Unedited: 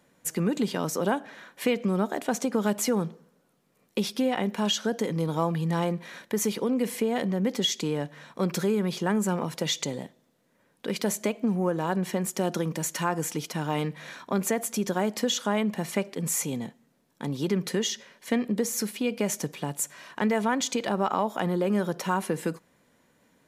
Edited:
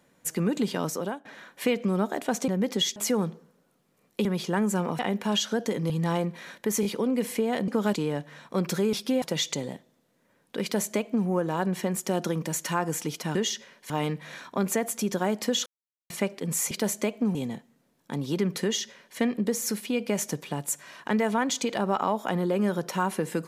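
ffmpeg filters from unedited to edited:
ffmpeg -i in.wav -filter_complex "[0:a]asplit=19[link_01][link_02][link_03][link_04][link_05][link_06][link_07][link_08][link_09][link_10][link_11][link_12][link_13][link_14][link_15][link_16][link_17][link_18][link_19];[link_01]atrim=end=1.25,asetpts=PTS-STARTPTS,afade=type=out:start_time=0.86:duration=0.39:silence=0.105925[link_20];[link_02]atrim=start=1.25:end=2.482,asetpts=PTS-STARTPTS,afade=type=in:duration=0.004:curve=hsin:silence=0.105925[link_21];[link_03]atrim=start=7.308:end=7.792[link_22];[link_04]atrim=start=2.738:end=4.032[link_23];[link_05]atrim=start=8.778:end=9.522[link_24];[link_06]atrim=start=4.318:end=5.232[link_25];[link_07]atrim=start=5.568:end=6.502[link_26];[link_08]atrim=start=6.478:end=6.502[link_27];[link_09]atrim=start=6.478:end=7.312[link_28];[link_10]atrim=start=2.478:end=2.742[link_29];[link_11]atrim=start=7.788:end=8.782[link_30];[link_12]atrim=start=4.028:end=4.322[link_31];[link_13]atrim=start=9.518:end=13.652[link_32];[link_14]atrim=start=17.738:end=18.292[link_33];[link_15]atrim=start=13.648:end=15.41,asetpts=PTS-STARTPTS,afade=type=out:start_time=1.758:duration=0.004:curve=hsin[link_34];[link_16]atrim=start=15.41:end=15.85,asetpts=PTS-STARTPTS,volume=0[link_35];[link_17]atrim=start=15.85:end=16.462,asetpts=PTS-STARTPTS,afade=type=in:duration=0.004:curve=hsin[link_36];[link_18]atrim=start=10.928:end=11.572[link_37];[link_19]atrim=start=16.458[link_38];[link_20][link_21]concat=n=2:v=0:a=1[link_39];[link_39][link_22]acrossfade=duration=0.004:curve1=hsin:curve2=hsin[link_40];[link_40][link_23]acrossfade=duration=0.004:curve1=hsin:curve2=hsin[link_41];[link_41][link_24]acrossfade=duration=0.004:curve1=hsin:curve2=hsin[link_42];[link_42][link_25]acrossfade=duration=0.004:curve1=hsin:curve2=hsin[link_43];[link_43][link_26]acrossfade=duration=0.004:curve1=hsin:curve2=hsin[link_44];[link_44][link_27]acrossfade=duration=0.004:curve1=hsin:curve2=hsin[link_45];[link_45][link_28]acrossfade=duration=0.004:curve1=hsin:curve2=hsin[link_46];[link_46][link_29]acrossfade=duration=0.004:curve1=hsin:curve2=hsin[link_47];[link_47][link_30]acrossfade=duration=0.004:curve1=hsin:curve2=hsin[link_48];[link_48][link_31]acrossfade=duration=0.004:curve1=hsin:curve2=hsin[link_49];[link_49][link_32]acrossfade=duration=0.004:curve1=hsin:curve2=hsin[link_50];[link_50][link_33]acrossfade=duration=0.004:curve1=hsin:curve2=hsin[link_51];[link_34][link_35][link_36]concat=n=3:v=0:a=1[link_52];[link_51][link_52]acrossfade=duration=0.004:curve1=hsin:curve2=hsin[link_53];[link_53][link_37]acrossfade=duration=0.004:curve1=hsin:curve2=hsin[link_54];[link_54][link_38]acrossfade=duration=0.004:curve1=hsin:curve2=hsin" out.wav

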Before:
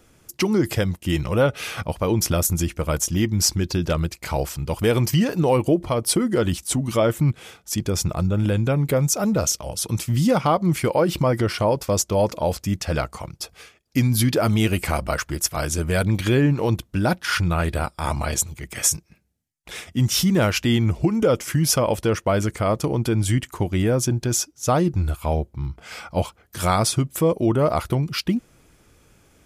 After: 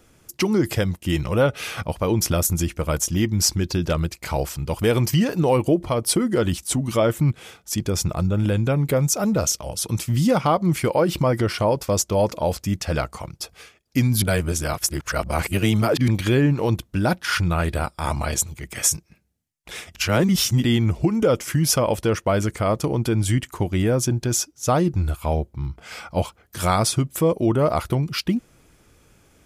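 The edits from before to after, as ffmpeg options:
ffmpeg -i in.wav -filter_complex "[0:a]asplit=5[link_01][link_02][link_03][link_04][link_05];[link_01]atrim=end=14.222[link_06];[link_02]atrim=start=14.218:end=16.082,asetpts=PTS-STARTPTS,areverse[link_07];[link_03]atrim=start=16.078:end=19.952[link_08];[link_04]atrim=start=19.948:end=20.642,asetpts=PTS-STARTPTS,areverse[link_09];[link_05]atrim=start=20.638[link_10];[link_06][link_07]acrossfade=duration=0.004:curve1=hsin:curve2=hsin[link_11];[link_11][link_08]acrossfade=duration=0.004:curve1=hsin:curve2=hsin[link_12];[link_12][link_09]acrossfade=duration=0.004:curve1=hsin:curve2=hsin[link_13];[link_13][link_10]acrossfade=duration=0.004:curve1=hsin:curve2=hsin" out.wav

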